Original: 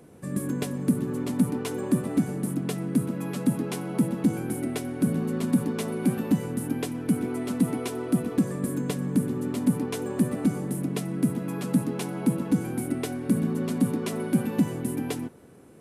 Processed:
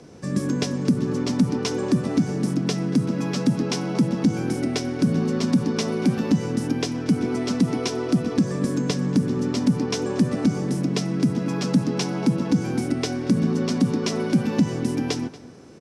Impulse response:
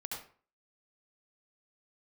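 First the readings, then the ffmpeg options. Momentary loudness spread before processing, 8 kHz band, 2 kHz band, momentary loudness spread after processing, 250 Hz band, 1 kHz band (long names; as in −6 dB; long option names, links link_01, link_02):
5 LU, +3.5 dB, +5.5 dB, 4 LU, +4.0 dB, +5.0 dB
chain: -filter_complex "[0:a]lowpass=frequency=5500:width_type=q:width=4.3,asplit=2[link_01][link_02];[link_02]adelay=233.2,volume=-19dB,highshelf=frequency=4000:gain=-5.25[link_03];[link_01][link_03]amix=inputs=2:normalize=0,acrossover=split=210[link_04][link_05];[link_05]acompressor=threshold=-26dB:ratio=6[link_06];[link_04][link_06]amix=inputs=2:normalize=0,volume=5.5dB"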